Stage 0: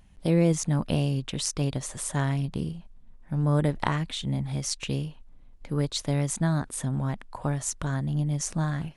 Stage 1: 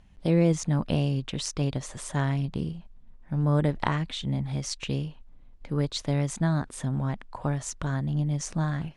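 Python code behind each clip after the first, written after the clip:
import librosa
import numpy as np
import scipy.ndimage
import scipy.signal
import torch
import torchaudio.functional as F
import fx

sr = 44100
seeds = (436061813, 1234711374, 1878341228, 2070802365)

y = scipy.signal.sosfilt(scipy.signal.bessel(2, 5900.0, 'lowpass', norm='mag', fs=sr, output='sos'), x)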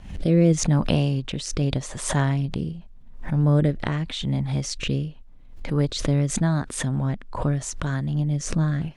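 y = fx.rotary(x, sr, hz=0.85)
y = fx.pre_swell(y, sr, db_per_s=88.0)
y = y * librosa.db_to_amplitude(5.5)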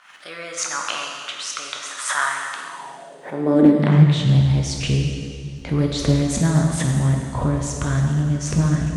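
y = fx.rev_plate(x, sr, seeds[0], rt60_s=2.1, hf_ratio=1.0, predelay_ms=0, drr_db=0.0)
y = fx.filter_sweep_highpass(y, sr, from_hz=1300.0, to_hz=62.0, start_s=2.62, end_s=4.62, q=4.3)
y = fx.doppler_dist(y, sr, depth_ms=0.3)
y = y * librosa.db_to_amplitude(1.0)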